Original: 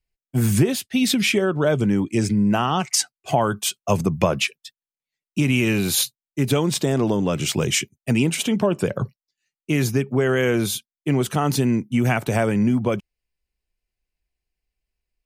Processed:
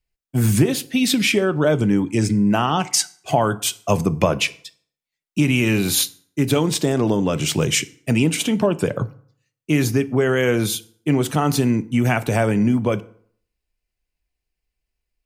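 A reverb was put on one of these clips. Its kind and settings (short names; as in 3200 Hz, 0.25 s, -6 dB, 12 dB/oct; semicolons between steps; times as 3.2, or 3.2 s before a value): FDN reverb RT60 0.57 s, low-frequency decay 1×, high-frequency decay 0.7×, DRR 13.5 dB; gain +1.5 dB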